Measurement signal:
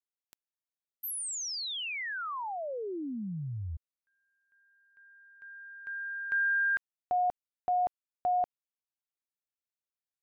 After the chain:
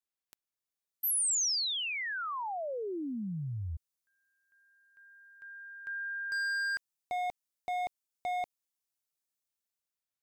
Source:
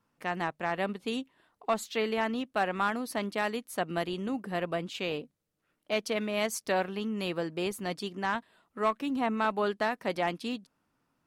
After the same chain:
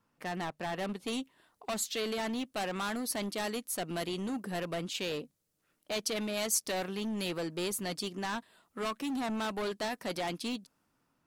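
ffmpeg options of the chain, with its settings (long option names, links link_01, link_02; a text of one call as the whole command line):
ffmpeg -i in.wav -filter_complex "[0:a]acrossover=split=4600[link_01][link_02];[link_01]volume=32dB,asoftclip=hard,volume=-32dB[link_03];[link_02]dynaudnorm=framelen=370:gausssize=5:maxgain=8dB[link_04];[link_03][link_04]amix=inputs=2:normalize=0" out.wav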